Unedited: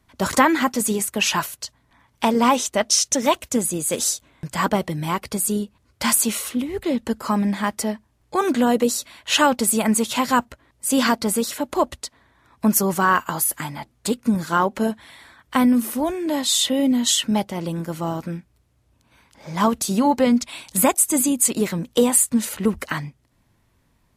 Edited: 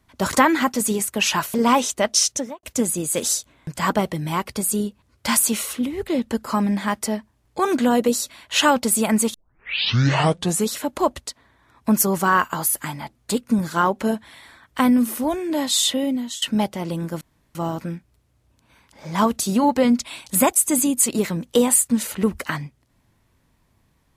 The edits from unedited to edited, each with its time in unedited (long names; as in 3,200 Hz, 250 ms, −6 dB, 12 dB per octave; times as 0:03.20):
0:01.54–0:02.30: remove
0:03.01–0:03.39: fade out and dull
0:10.10: tape start 1.39 s
0:16.63–0:17.18: fade out linear, to −20 dB
0:17.97: splice in room tone 0.34 s